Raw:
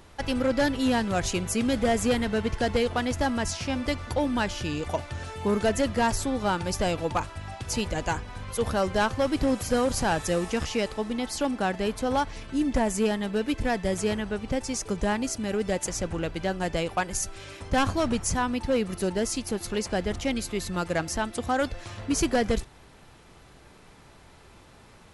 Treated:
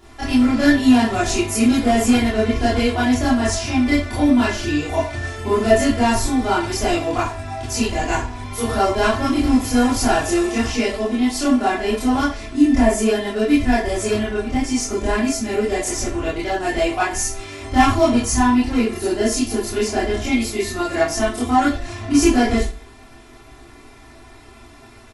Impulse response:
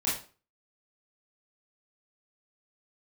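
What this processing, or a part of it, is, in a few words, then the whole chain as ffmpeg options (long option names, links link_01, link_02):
microphone above a desk: -filter_complex "[0:a]aecho=1:1:2.9:0.84[link_01];[1:a]atrim=start_sample=2205[link_02];[link_01][link_02]afir=irnorm=-1:irlink=0,volume=-2dB"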